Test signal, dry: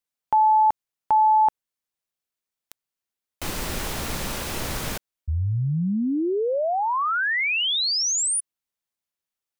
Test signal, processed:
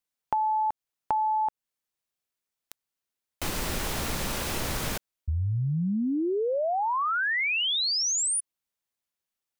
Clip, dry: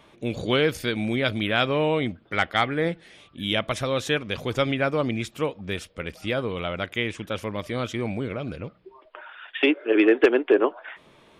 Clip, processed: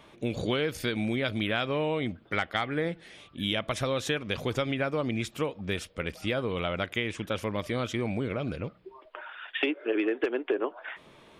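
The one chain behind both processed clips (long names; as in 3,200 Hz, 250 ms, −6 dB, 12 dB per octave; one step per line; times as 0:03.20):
downward compressor 6 to 1, threshold −25 dBFS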